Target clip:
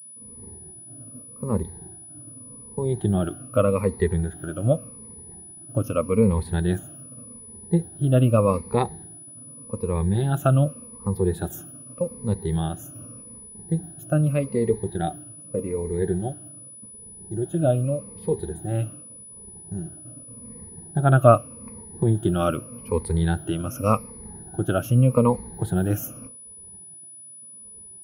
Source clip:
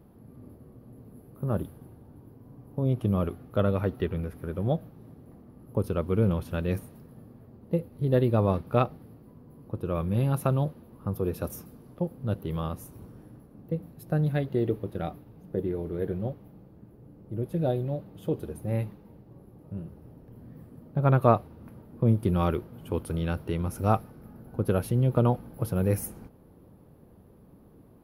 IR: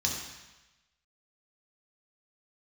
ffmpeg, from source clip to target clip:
-af "afftfilt=real='re*pow(10,18/40*sin(2*PI*(0.9*log(max(b,1)*sr/1024/100)/log(2)-(-0.84)*(pts-256)/sr)))':imag='im*pow(10,18/40*sin(2*PI*(0.9*log(max(b,1)*sr/1024/100)/log(2)-(-0.84)*(pts-256)/sr)))':win_size=1024:overlap=0.75,agate=range=-33dB:threshold=-42dB:ratio=3:detection=peak,aeval=exprs='val(0)+0.00794*sin(2*PI*9900*n/s)':channel_layout=same,volume=1dB"

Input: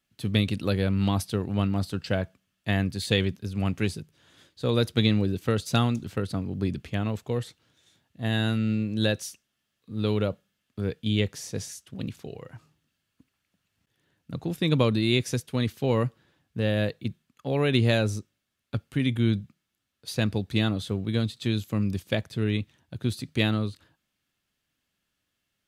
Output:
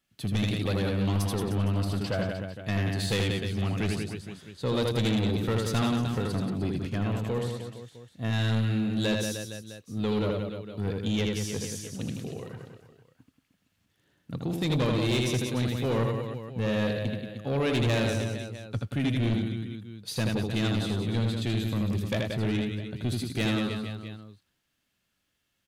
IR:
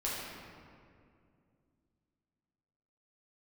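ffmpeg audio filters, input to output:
-af "aecho=1:1:80|180|305|461.2|656.6:0.631|0.398|0.251|0.158|0.1,asoftclip=type=tanh:threshold=-21.5dB"

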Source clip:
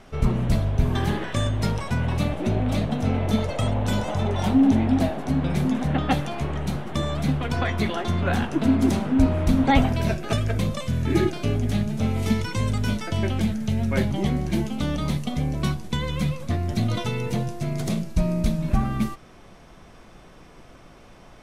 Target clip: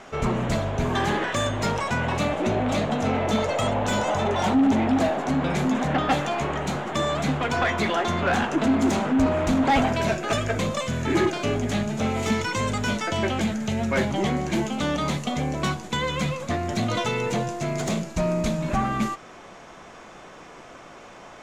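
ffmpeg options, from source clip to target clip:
ffmpeg -i in.wav -filter_complex "[0:a]equalizer=frequency=7000:width_type=o:width=0.36:gain=12,asplit=2[link_01][link_02];[link_02]highpass=frequency=720:poles=1,volume=22dB,asoftclip=type=tanh:threshold=-5dB[link_03];[link_01][link_03]amix=inputs=2:normalize=0,lowpass=frequency=1900:poles=1,volume=-6dB,volume=-5.5dB" out.wav

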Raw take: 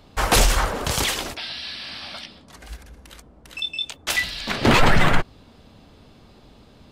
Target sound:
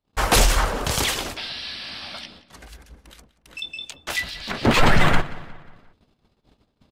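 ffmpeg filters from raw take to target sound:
ffmpeg -i in.wav -filter_complex "[0:a]agate=range=-33dB:threshold=-46dB:ratio=16:detection=peak,asettb=1/sr,asplit=3[link_01][link_02][link_03];[link_01]atrim=end=2.654[link_04];[link_02]atrim=start=2.65:end=4.77,asetpts=PTS-STARTPTS,afade=type=in:duration=0.004:curve=qsin,afade=type=out:start_time=2.116:duration=0.004:curve=qsin,acrossover=split=1900[link_05][link_06];[link_05]aeval=exprs='val(0)*(1-0.7/2+0.7/2*cos(2*PI*6.9*n/s))':channel_layout=same[link_07];[link_06]aeval=exprs='val(0)*(1-0.7/2-0.7/2*cos(2*PI*6.9*n/s))':channel_layout=same[link_08];[link_07][link_08]amix=inputs=2:normalize=0[link_09];[link_03]atrim=start=4.766[link_10];[link_04][link_09]acrossfade=duration=0.004:curve1=hsin:curve2=qsin[link_11];[link_11][link_10]acrossfade=duration=0.004:curve1=qsin:curve2=hsin,asplit=2[link_12][link_13];[link_13]adelay=179,lowpass=frequency=4700:poles=1,volume=-17.5dB,asplit=2[link_14][link_15];[link_15]adelay=179,lowpass=frequency=4700:poles=1,volume=0.5,asplit=2[link_16][link_17];[link_17]adelay=179,lowpass=frequency=4700:poles=1,volume=0.5,asplit=2[link_18][link_19];[link_19]adelay=179,lowpass=frequency=4700:poles=1,volume=0.5[link_20];[link_12][link_14][link_16][link_18][link_20]amix=inputs=5:normalize=0" out.wav

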